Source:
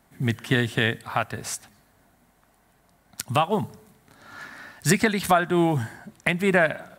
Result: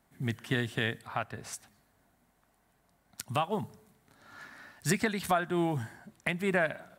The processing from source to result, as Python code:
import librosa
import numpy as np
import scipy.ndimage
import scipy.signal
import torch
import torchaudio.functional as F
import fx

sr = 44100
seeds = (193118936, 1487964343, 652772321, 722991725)

y = fx.high_shelf(x, sr, hz=5800.0, db=-8.0, at=(1.07, 1.53))
y = y * 10.0 ** (-8.5 / 20.0)